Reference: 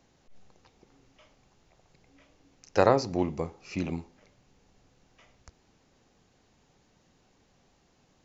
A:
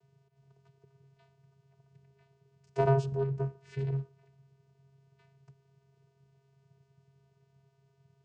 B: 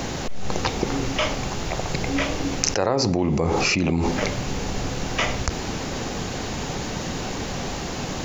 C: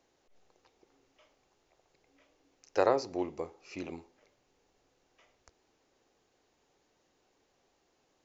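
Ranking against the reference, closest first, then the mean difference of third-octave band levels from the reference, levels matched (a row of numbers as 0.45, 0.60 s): C, A, B; 2.0, 8.0, 11.0 dB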